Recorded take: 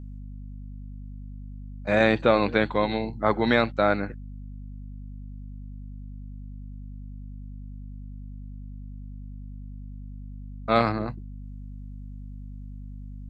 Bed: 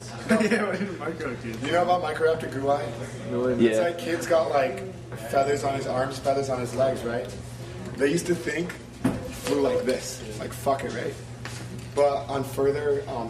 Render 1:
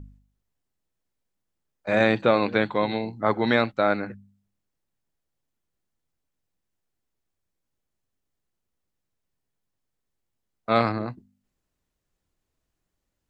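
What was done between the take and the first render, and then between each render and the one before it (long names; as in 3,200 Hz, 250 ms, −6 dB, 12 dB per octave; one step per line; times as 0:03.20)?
hum removal 50 Hz, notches 5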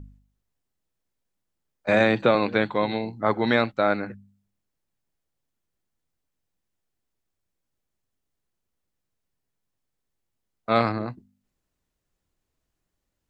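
0:01.88–0:02.35: multiband upward and downward compressor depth 70%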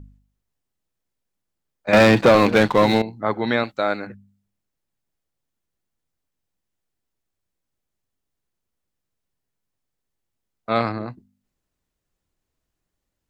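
0:01.93–0:03.02: leveller curve on the samples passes 3
0:03.63–0:04.07: bass and treble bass −5 dB, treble +9 dB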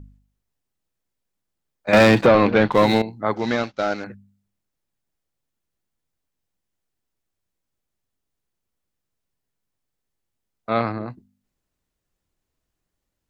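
0:02.26–0:02.72: high-frequency loss of the air 210 metres
0:03.36–0:04.04: variable-slope delta modulation 32 kbit/s
0:10.70–0:11.10: high-frequency loss of the air 170 metres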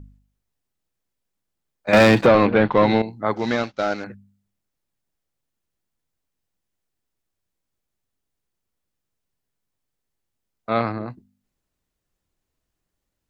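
0:02.46–0:03.03: Gaussian smoothing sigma 2 samples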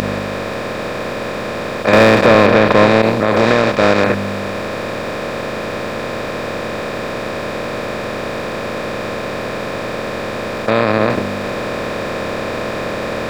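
compressor on every frequency bin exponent 0.2
boost into a limiter +0.5 dB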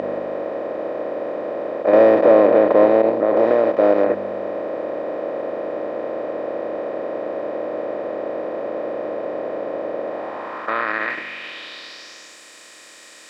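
hollow resonant body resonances 310/1,900/3,000 Hz, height 10 dB, ringing for 45 ms
band-pass filter sweep 590 Hz → 7,900 Hz, 0:10.03–0:12.40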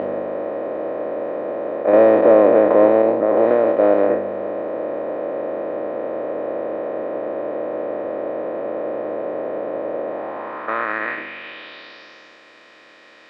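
peak hold with a decay on every bin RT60 0.63 s
high-frequency loss of the air 300 metres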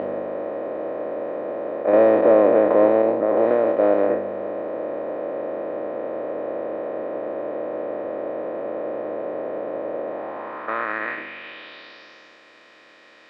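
level −3 dB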